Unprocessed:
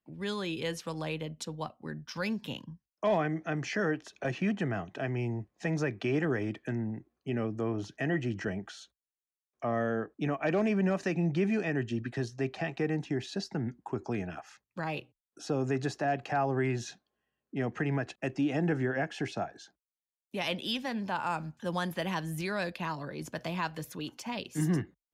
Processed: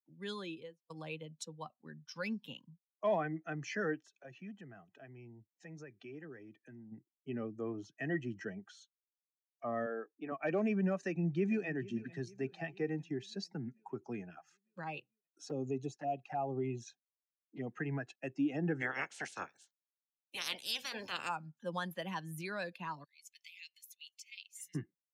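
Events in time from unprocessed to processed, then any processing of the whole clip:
0.42–0.9 studio fade out
4.04–6.92 compressor 1.5:1, threshold -51 dBFS
9.86–10.32 BPF 280–2800 Hz
11–11.67 echo throw 0.45 s, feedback 65%, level -13 dB
15.49–17.67 envelope flanger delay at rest 11.8 ms, full sweep at -27.5 dBFS
18.8–21.28 spectral limiter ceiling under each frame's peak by 24 dB
23.04–24.75 elliptic high-pass 2100 Hz
whole clip: per-bin expansion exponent 1.5; HPF 140 Hz 24 dB/oct; gain -2.5 dB

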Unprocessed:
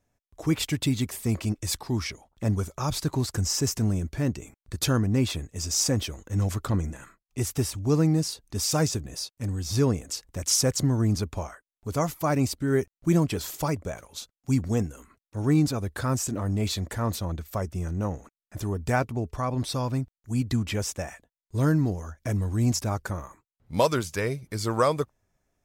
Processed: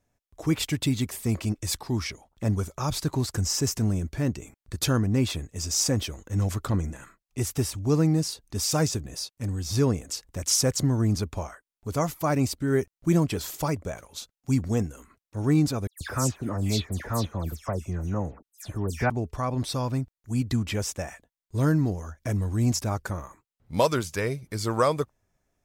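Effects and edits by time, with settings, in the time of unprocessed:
15.87–19.1 dispersion lows, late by 0.137 s, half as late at 2800 Hz

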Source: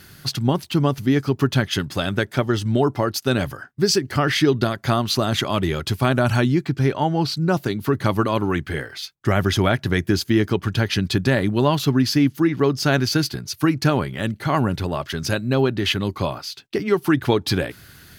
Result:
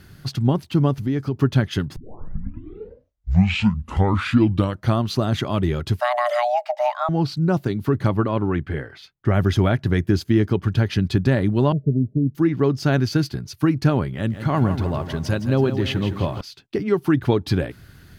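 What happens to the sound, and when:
0.92–1.36 compressor 2:1, threshold -22 dBFS
1.96 tape start 3.09 s
6–7.09 frequency shift +480 Hz
8.09–9.34 tone controls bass -1 dB, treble -10 dB
11.72–12.35 rippled Chebyshev low-pass 640 Hz, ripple 6 dB
14.15–16.41 lo-fi delay 0.163 s, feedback 55%, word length 7-bit, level -9.5 dB
whole clip: tilt -2 dB/oct; gain -3.5 dB

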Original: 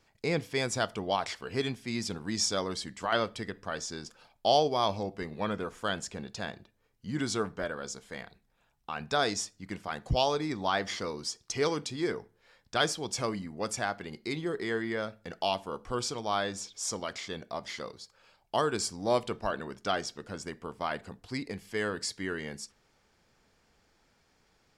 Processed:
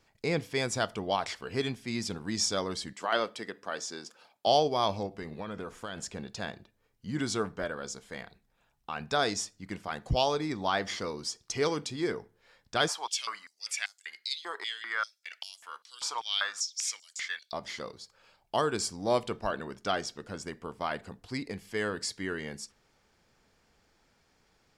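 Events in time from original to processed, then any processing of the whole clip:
2.93–4.47 HPF 270 Hz
5.06–6.01 compressor, threshold -34 dBFS
12.88–17.53 stepped high-pass 5.1 Hz 960–7300 Hz

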